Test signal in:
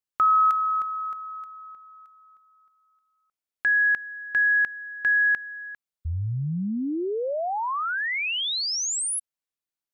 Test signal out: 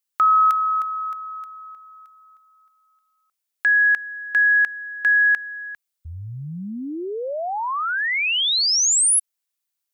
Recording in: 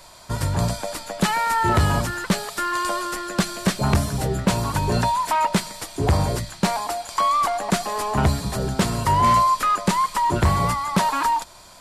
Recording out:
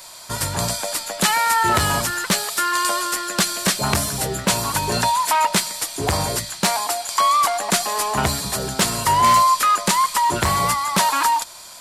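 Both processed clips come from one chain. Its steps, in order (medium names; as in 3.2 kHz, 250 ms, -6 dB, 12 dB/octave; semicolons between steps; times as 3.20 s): tilt EQ +2.5 dB/octave; trim +2.5 dB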